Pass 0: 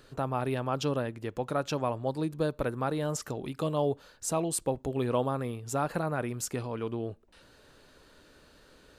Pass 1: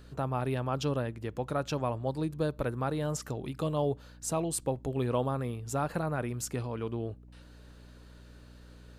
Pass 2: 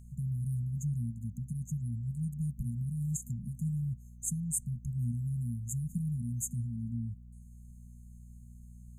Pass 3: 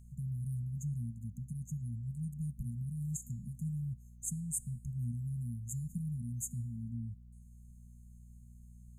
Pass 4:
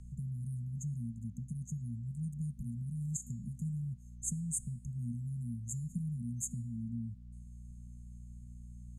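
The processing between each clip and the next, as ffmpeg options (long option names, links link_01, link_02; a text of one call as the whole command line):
ffmpeg -i in.wav -af "equalizer=frequency=120:width=1.4:gain=4,aeval=exprs='val(0)+0.00355*(sin(2*PI*60*n/s)+sin(2*PI*2*60*n/s)/2+sin(2*PI*3*60*n/s)/3+sin(2*PI*4*60*n/s)/4+sin(2*PI*5*60*n/s)/5)':channel_layout=same,volume=-2dB" out.wav
ffmpeg -i in.wav -af "afftfilt=real='re*(1-between(b*sr/4096,240,6300))':imag='im*(1-between(b*sr/4096,240,6300))':win_size=4096:overlap=0.75,volume=2dB" out.wav
ffmpeg -i in.wav -af "equalizer=frequency=460:width=0.59:gain=-2.5,bandreject=frequency=384.8:width_type=h:width=4,bandreject=frequency=769.6:width_type=h:width=4,bandreject=frequency=1154.4:width_type=h:width=4,bandreject=frequency=1539.2:width_type=h:width=4,bandreject=frequency=1924:width_type=h:width=4,bandreject=frequency=2308.8:width_type=h:width=4,bandreject=frequency=2693.6:width_type=h:width=4,bandreject=frequency=3078.4:width_type=h:width=4,bandreject=frequency=3463.2:width_type=h:width=4,bandreject=frequency=3848:width_type=h:width=4,bandreject=frequency=4232.8:width_type=h:width=4,bandreject=frequency=4617.6:width_type=h:width=4,bandreject=frequency=5002.4:width_type=h:width=4,bandreject=frequency=5387.2:width_type=h:width=4,bandreject=frequency=5772:width_type=h:width=4,bandreject=frequency=6156.8:width_type=h:width=4,bandreject=frequency=6541.6:width_type=h:width=4,bandreject=frequency=6926.4:width_type=h:width=4,bandreject=frequency=7311.2:width_type=h:width=4,bandreject=frequency=7696:width_type=h:width=4,bandreject=frequency=8080.8:width_type=h:width=4,bandreject=frequency=8465.6:width_type=h:width=4,bandreject=frequency=8850.4:width_type=h:width=4,bandreject=frequency=9235.2:width_type=h:width=4,bandreject=frequency=9620:width_type=h:width=4,bandreject=frequency=10004.8:width_type=h:width=4,bandreject=frequency=10389.6:width_type=h:width=4,bandreject=frequency=10774.4:width_type=h:width=4,bandreject=frequency=11159.2:width_type=h:width=4,bandreject=frequency=11544:width_type=h:width=4,bandreject=frequency=11928.8:width_type=h:width=4,bandreject=frequency=12313.6:width_type=h:width=4,bandreject=frequency=12698.4:width_type=h:width=4,bandreject=frequency=13083.2:width_type=h:width=4,bandreject=frequency=13468:width_type=h:width=4,bandreject=frequency=13852.8:width_type=h:width=4,bandreject=frequency=14237.6:width_type=h:width=4,bandreject=frequency=14622.4:width_type=h:width=4,volume=-3.5dB" out.wav
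ffmpeg -i in.wav -filter_complex "[0:a]lowpass=7300,acrossover=split=190|1700|4300[link_01][link_02][link_03][link_04];[link_01]acompressor=threshold=-48dB:ratio=6[link_05];[link_05][link_02][link_03][link_04]amix=inputs=4:normalize=0,volume=5.5dB" out.wav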